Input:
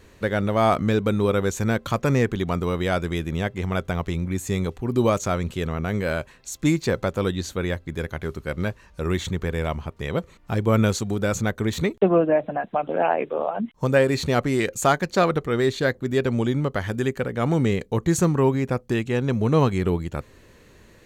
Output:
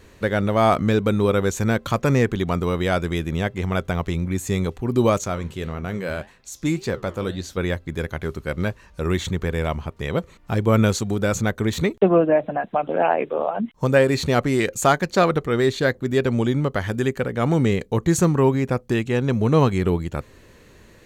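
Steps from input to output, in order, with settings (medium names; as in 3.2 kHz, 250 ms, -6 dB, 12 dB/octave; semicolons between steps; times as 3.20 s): 5.24–7.57 s: flange 1.8 Hz, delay 9 ms, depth 8.5 ms, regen -78%; trim +2 dB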